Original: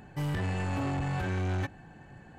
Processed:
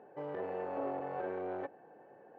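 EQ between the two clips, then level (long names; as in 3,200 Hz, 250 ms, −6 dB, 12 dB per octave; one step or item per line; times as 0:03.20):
four-pole ladder band-pass 550 Hz, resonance 55%
+9.5 dB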